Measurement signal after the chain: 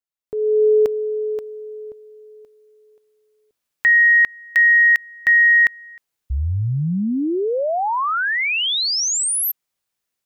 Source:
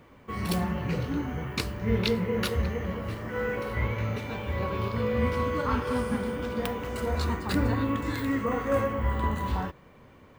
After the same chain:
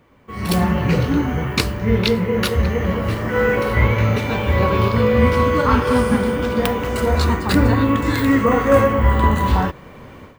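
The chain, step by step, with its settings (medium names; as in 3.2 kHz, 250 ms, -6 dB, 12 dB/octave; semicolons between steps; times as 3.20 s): level rider gain up to 16.5 dB; trim -1 dB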